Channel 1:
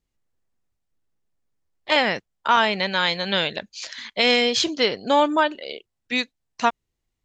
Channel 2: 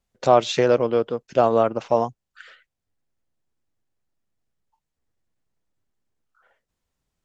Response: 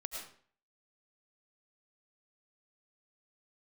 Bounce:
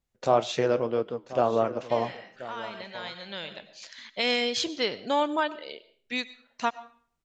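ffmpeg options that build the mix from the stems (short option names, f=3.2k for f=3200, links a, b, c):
-filter_complex "[0:a]volume=-8.5dB,asplit=2[a][b];[b]volume=-12.5dB[c];[1:a]flanger=delay=6.7:depth=5.1:regen=-73:speed=2:shape=triangular,volume=-2.5dB,asplit=4[d][e][f][g];[e]volume=-21dB[h];[f]volume=-15.5dB[i];[g]apad=whole_len=319597[j];[a][j]sidechaincompress=threshold=-51dB:ratio=8:attack=38:release=1170[k];[2:a]atrim=start_sample=2205[l];[c][h]amix=inputs=2:normalize=0[m];[m][l]afir=irnorm=-1:irlink=0[n];[i]aecho=0:1:1034:1[o];[k][d][n][o]amix=inputs=4:normalize=0"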